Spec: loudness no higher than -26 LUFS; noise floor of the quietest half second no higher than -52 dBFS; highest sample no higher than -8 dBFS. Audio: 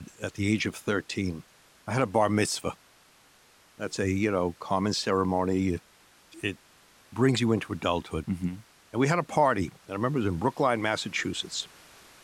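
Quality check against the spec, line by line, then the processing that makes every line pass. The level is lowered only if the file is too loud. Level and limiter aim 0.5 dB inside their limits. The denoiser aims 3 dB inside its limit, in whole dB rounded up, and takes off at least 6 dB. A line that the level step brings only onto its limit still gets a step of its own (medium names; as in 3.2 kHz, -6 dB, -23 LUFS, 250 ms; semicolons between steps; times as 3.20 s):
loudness -28.5 LUFS: pass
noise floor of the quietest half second -59 dBFS: pass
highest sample -11.0 dBFS: pass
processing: none needed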